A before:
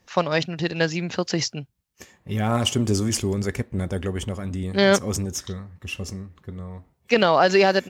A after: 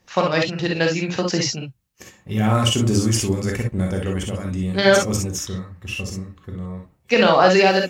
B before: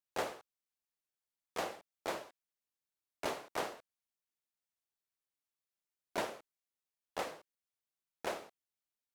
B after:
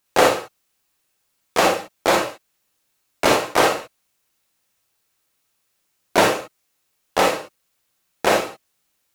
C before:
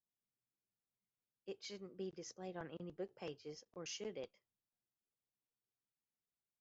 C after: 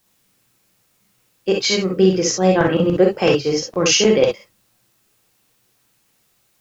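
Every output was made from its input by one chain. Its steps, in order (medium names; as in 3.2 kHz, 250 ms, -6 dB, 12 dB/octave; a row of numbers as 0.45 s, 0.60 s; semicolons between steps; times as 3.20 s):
gated-style reverb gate 80 ms rising, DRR 0.5 dB; peak normalisation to -2 dBFS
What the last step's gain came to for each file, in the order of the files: +1.0 dB, +20.0 dB, +30.0 dB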